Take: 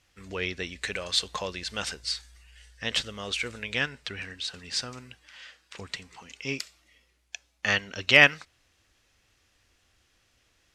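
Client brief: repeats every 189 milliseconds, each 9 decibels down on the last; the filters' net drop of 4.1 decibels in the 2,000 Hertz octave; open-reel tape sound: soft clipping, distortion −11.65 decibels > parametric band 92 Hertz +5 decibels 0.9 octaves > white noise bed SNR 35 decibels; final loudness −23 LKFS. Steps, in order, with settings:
parametric band 2,000 Hz −5 dB
repeating echo 189 ms, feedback 35%, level −9 dB
soft clipping −15 dBFS
parametric band 92 Hz +5 dB 0.9 octaves
white noise bed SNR 35 dB
level +8.5 dB

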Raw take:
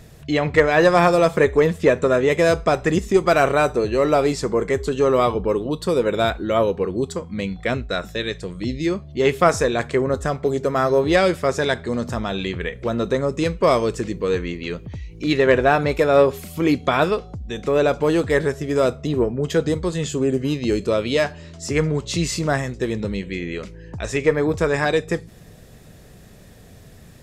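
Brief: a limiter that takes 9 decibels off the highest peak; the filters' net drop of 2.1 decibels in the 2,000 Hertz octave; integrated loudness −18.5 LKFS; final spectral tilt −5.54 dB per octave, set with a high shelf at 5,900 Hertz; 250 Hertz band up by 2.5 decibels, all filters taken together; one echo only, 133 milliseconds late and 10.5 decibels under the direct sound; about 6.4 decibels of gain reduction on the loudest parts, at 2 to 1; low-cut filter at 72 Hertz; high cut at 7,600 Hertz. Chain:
high-pass filter 72 Hz
low-pass filter 7,600 Hz
parametric band 250 Hz +3.5 dB
parametric band 2,000 Hz −3.5 dB
high-shelf EQ 5,900 Hz +7 dB
downward compressor 2 to 1, threshold −21 dBFS
brickwall limiter −16 dBFS
single-tap delay 133 ms −10.5 dB
level +7.5 dB

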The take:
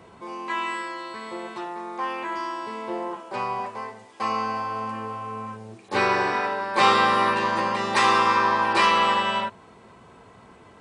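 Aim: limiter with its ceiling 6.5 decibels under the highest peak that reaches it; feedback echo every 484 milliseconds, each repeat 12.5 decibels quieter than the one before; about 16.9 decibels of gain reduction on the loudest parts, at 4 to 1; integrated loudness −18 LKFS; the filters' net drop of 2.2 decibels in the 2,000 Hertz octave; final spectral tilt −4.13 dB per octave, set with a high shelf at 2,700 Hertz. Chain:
parametric band 2,000 Hz −4.5 dB
high-shelf EQ 2,700 Hz +4 dB
downward compressor 4 to 1, threshold −36 dBFS
brickwall limiter −29.5 dBFS
repeating echo 484 ms, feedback 24%, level −12.5 dB
level +20.5 dB

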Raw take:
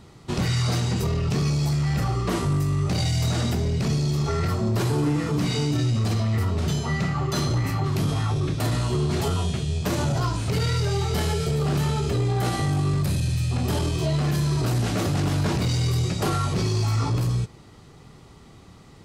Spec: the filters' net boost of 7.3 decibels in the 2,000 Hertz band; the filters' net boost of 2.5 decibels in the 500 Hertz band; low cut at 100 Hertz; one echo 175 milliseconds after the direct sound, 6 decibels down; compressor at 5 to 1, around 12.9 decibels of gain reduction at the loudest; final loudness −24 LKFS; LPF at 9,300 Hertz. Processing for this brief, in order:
high-pass filter 100 Hz
low-pass filter 9,300 Hz
parametric band 500 Hz +3 dB
parametric band 2,000 Hz +8.5 dB
downward compressor 5 to 1, threshold −35 dBFS
single-tap delay 175 ms −6 dB
level +12 dB

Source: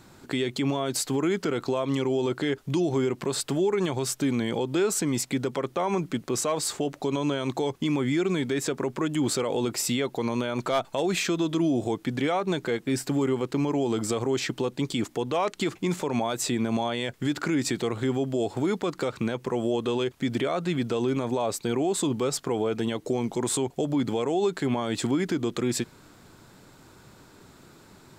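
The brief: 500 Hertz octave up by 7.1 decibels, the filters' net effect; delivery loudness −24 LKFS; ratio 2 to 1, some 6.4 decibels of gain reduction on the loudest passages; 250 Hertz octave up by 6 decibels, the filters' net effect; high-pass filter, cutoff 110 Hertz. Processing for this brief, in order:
high-pass filter 110 Hz
parametric band 250 Hz +5 dB
parametric band 500 Hz +7.5 dB
downward compressor 2 to 1, threshold −27 dBFS
level +3.5 dB

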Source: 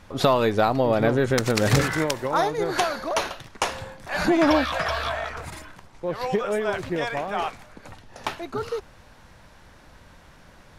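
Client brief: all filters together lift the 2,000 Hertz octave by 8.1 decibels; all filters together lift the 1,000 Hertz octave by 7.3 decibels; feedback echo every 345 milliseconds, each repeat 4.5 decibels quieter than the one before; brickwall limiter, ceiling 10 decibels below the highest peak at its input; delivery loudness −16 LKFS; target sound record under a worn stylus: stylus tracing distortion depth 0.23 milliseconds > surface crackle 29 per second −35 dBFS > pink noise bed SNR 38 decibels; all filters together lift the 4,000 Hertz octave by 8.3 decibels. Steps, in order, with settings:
parametric band 1,000 Hz +7.5 dB
parametric band 2,000 Hz +6 dB
parametric band 4,000 Hz +8 dB
brickwall limiter −9.5 dBFS
repeating echo 345 ms, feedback 60%, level −4.5 dB
stylus tracing distortion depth 0.23 ms
surface crackle 29 per second −35 dBFS
pink noise bed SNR 38 dB
level +4 dB

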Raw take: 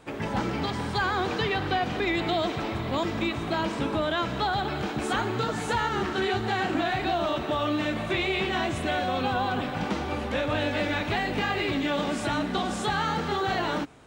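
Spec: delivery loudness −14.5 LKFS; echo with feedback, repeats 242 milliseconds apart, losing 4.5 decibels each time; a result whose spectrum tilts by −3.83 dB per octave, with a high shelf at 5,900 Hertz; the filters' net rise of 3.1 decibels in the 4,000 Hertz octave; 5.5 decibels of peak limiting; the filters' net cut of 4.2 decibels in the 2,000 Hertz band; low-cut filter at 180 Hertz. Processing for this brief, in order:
high-pass filter 180 Hz
parametric band 2,000 Hz −7.5 dB
parametric band 4,000 Hz +4.5 dB
high-shelf EQ 5,900 Hz +6 dB
brickwall limiter −21 dBFS
repeating echo 242 ms, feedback 60%, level −4.5 dB
level +13.5 dB

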